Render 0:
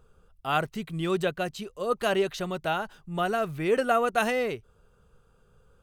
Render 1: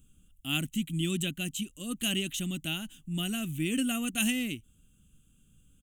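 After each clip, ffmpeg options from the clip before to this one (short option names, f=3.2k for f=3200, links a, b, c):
-af "firequalizer=gain_entry='entry(110,0);entry(290,9);entry(420,-20);entry(620,-18);entry(970,-21);entry(3000,9);entry(4700,-10);entry(6900,13);entry(14000,11)':delay=0.05:min_phase=1,volume=-1.5dB"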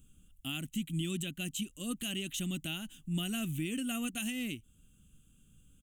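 -af "alimiter=level_in=1dB:limit=-24dB:level=0:latency=1:release=322,volume=-1dB"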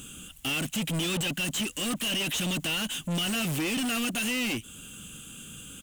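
-filter_complex "[0:a]asplit=2[a][b];[b]highpass=f=720:p=1,volume=34dB,asoftclip=type=tanh:threshold=-24.5dB[c];[a][c]amix=inputs=2:normalize=0,lowpass=f=6.6k:p=1,volume=-6dB,volume=2dB"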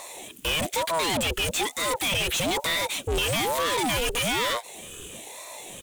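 -af "aeval=exprs='val(0)*sin(2*PI*520*n/s+520*0.6/1.1*sin(2*PI*1.1*n/s))':c=same,volume=6.5dB"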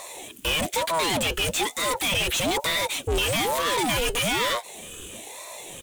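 -af "flanger=delay=1.6:depth=5.3:regen=-69:speed=0.36:shape=triangular,volume=5.5dB"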